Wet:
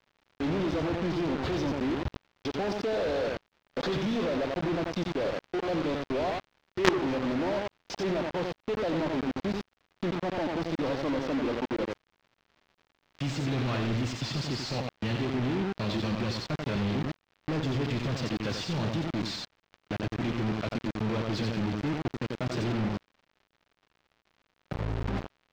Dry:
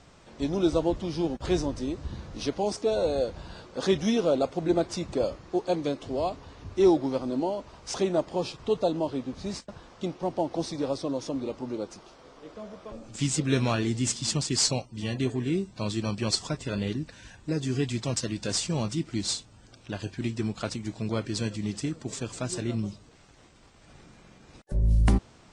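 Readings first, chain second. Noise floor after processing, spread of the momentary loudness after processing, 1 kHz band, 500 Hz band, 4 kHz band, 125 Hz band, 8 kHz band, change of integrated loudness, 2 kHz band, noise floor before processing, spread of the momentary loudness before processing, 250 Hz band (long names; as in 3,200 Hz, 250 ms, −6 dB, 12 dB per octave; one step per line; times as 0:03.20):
−78 dBFS, 6 LU, +0.5 dB, −3.0 dB, −3.5 dB, −1.5 dB, −14.5 dB, −2.5 dB, +4.0 dB, −55 dBFS, 12 LU, −1.5 dB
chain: output level in coarse steps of 17 dB
high-pass filter 73 Hz 24 dB per octave
repeating echo 89 ms, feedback 18%, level −6 dB
dynamic equaliser 3,900 Hz, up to +4 dB, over −48 dBFS, Q 0.77
log-companded quantiser 2 bits
surface crackle 130 per second −44 dBFS
high-frequency loss of the air 220 metres
level −1 dB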